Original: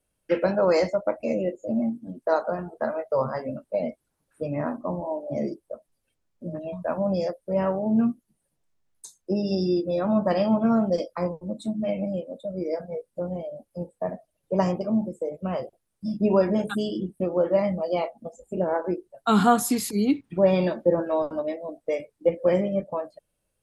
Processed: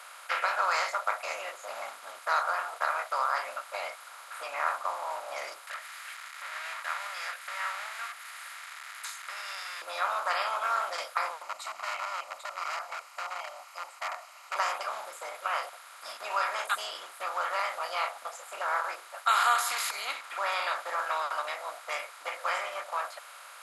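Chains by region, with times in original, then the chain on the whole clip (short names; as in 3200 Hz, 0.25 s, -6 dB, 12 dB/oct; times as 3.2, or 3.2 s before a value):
5.67–9.82 G.711 law mismatch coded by mu + compressor 1.5:1, threshold -56 dBFS + resonant high-pass 1900 Hz, resonance Q 6.3
11.42–14.56 HPF 430 Hz 6 dB/oct + hard clip -31 dBFS + fixed phaser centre 2400 Hz, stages 8
whole clip: per-bin compression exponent 0.4; HPF 1100 Hz 24 dB/oct; high shelf 5600 Hz -10 dB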